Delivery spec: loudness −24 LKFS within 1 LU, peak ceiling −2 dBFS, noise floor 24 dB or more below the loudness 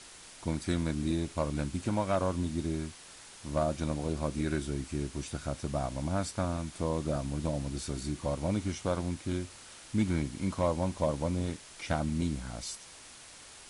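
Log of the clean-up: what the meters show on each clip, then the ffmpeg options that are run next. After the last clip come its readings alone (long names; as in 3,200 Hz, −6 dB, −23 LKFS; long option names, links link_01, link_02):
background noise floor −51 dBFS; target noise floor −58 dBFS; integrated loudness −33.5 LKFS; sample peak −19.0 dBFS; target loudness −24.0 LKFS
→ -af "afftdn=noise_reduction=7:noise_floor=-51"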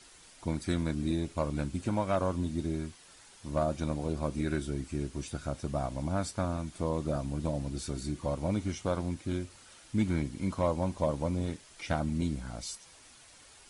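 background noise floor −56 dBFS; target noise floor −58 dBFS
→ -af "afftdn=noise_reduction=6:noise_floor=-56"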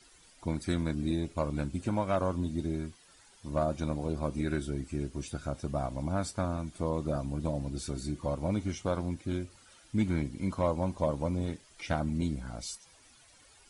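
background noise floor −60 dBFS; integrated loudness −33.5 LKFS; sample peak −19.0 dBFS; target loudness −24.0 LKFS
→ -af "volume=9.5dB"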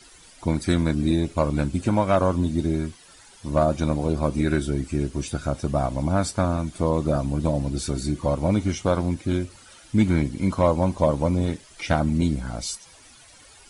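integrated loudness −24.0 LKFS; sample peak −9.5 dBFS; background noise floor −50 dBFS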